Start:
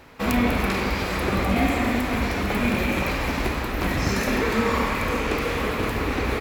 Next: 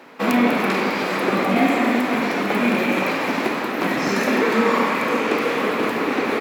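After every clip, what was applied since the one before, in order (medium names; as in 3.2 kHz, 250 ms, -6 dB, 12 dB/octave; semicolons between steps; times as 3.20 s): high-pass 200 Hz 24 dB/octave; treble shelf 4 kHz -7.5 dB; trim +5.5 dB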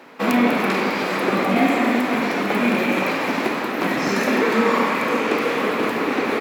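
no audible change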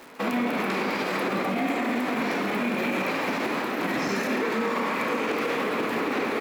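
peak limiter -15.5 dBFS, peak gain reduction 9.5 dB; crackle 450 per s -37 dBFS; trim -2.5 dB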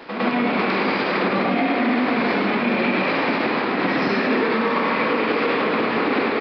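reverse echo 106 ms -7 dB; resampled via 11.025 kHz; trim +5.5 dB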